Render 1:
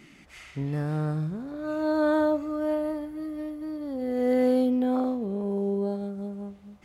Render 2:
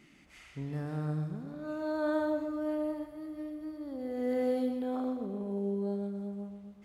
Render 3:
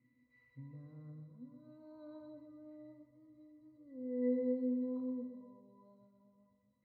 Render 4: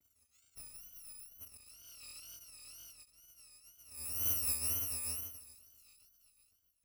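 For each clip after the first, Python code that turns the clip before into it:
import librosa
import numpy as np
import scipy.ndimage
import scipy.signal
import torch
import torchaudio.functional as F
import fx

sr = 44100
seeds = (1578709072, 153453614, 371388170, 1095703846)

y1 = fx.echo_feedback(x, sr, ms=125, feedback_pct=48, wet_db=-8.0)
y1 = F.gain(torch.from_numpy(y1), -8.0).numpy()
y2 = fx.octave_resonator(y1, sr, note='B', decay_s=0.28)
y2 = F.gain(torch.from_numpy(y2), 1.5).numpy()
y3 = fx.bit_reversed(y2, sr, seeds[0], block=256)
y3 = fx.wow_flutter(y3, sr, seeds[1], rate_hz=2.1, depth_cents=140.0)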